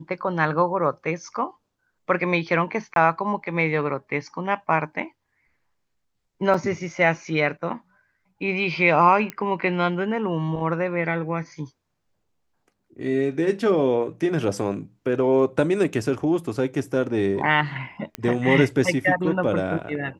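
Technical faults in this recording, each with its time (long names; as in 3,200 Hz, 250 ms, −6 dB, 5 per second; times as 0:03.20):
0:02.94–0:02.96: drop-out 22 ms
0:06.54: drop-out 4 ms
0:09.30: click −15 dBFS
0:18.15: click −14 dBFS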